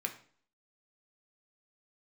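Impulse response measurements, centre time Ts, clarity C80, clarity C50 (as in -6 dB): 11 ms, 15.5 dB, 11.5 dB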